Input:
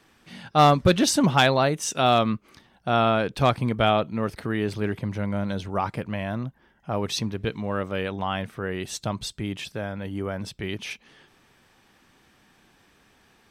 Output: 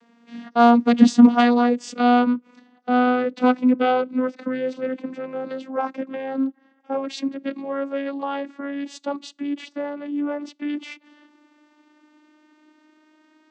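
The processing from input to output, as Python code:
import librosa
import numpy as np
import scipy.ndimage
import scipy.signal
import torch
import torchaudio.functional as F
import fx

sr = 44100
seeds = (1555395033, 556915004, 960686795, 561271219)

y = fx.vocoder_glide(x, sr, note=58, semitones=5)
y = y * 10.0 ** (4.5 / 20.0)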